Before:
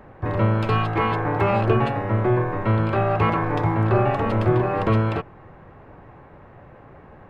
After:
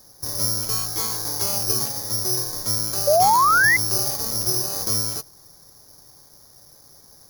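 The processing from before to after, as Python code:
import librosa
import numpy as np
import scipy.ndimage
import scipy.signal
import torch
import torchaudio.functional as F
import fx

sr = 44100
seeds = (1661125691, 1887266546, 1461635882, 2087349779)

y = (np.kron(scipy.signal.resample_poly(x, 1, 8), np.eye(8)[0]) * 8)[:len(x)]
y = fx.spec_paint(y, sr, seeds[0], shape='rise', start_s=3.07, length_s=0.7, low_hz=560.0, high_hz=2100.0, level_db=-3.0)
y = F.gain(torch.from_numpy(y), -13.0).numpy()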